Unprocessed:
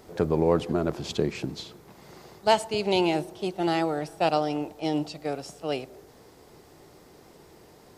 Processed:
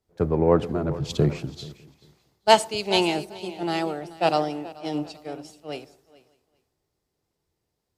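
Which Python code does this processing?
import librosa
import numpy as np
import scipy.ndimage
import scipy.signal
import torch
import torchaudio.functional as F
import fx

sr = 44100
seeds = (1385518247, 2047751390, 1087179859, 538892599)

p1 = fx.cheby_harmonics(x, sr, harmonics=(7,), levels_db=(-43,), full_scale_db=-7.0)
p2 = fx.peak_eq(p1, sr, hz=140.0, db=9.5, octaves=0.48, at=(0.83, 1.33))
p3 = p2 + fx.echo_multitap(p2, sr, ms=(433, 604, 829), db=(-11.0, -18.5, -19.5), dry=0)
p4 = fx.band_widen(p3, sr, depth_pct=100)
y = p4 * 10.0 ** (-1.0 / 20.0)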